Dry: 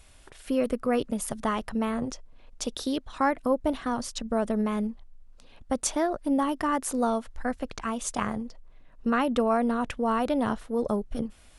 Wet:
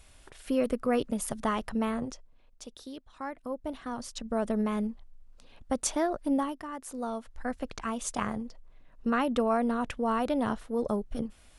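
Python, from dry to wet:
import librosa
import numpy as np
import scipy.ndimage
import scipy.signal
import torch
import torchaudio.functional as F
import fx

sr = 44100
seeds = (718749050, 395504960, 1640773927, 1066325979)

y = fx.gain(x, sr, db=fx.line((1.89, -1.5), (2.68, -14.0), (3.18, -14.0), (4.51, -2.0), (6.36, -2.0), (6.67, -13.5), (7.61, -2.5)))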